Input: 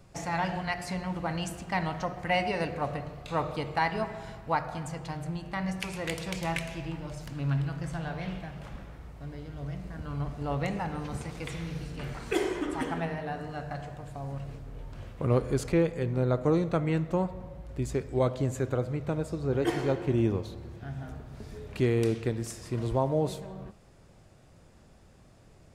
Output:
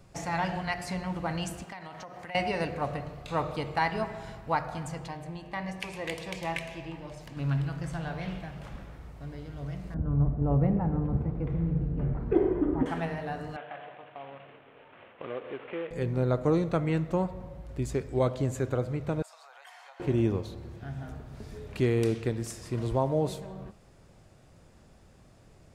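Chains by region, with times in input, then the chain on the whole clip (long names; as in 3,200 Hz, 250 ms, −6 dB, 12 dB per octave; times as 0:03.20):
0:01.64–0:02.35: high-pass filter 340 Hz 6 dB per octave + downward compressor, threshold −39 dBFS
0:05.08–0:07.37: bass and treble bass −7 dB, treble −6 dB + notch filter 1,400 Hz, Q 5
0:09.94–0:12.86: low-pass filter 1,500 Hz + tilt shelving filter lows +9.5 dB, about 670 Hz
0:13.56–0:15.91: variable-slope delta modulation 16 kbit/s + high-pass filter 420 Hz + downward compressor 2 to 1, threshold −36 dBFS
0:19.22–0:20.00: Butterworth high-pass 700 Hz 48 dB per octave + downward compressor 5 to 1, threshold −49 dBFS
whole clip: no processing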